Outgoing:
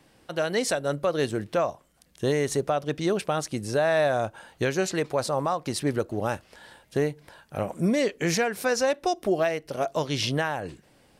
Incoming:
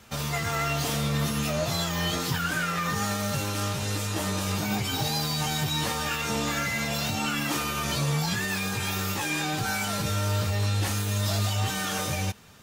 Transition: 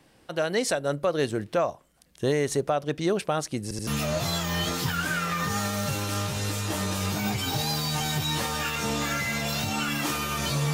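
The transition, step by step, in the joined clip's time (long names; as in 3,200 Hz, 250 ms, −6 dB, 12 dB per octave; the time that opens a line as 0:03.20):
outgoing
0:03.63: stutter in place 0.08 s, 3 plays
0:03.87: continue with incoming from 0:01.33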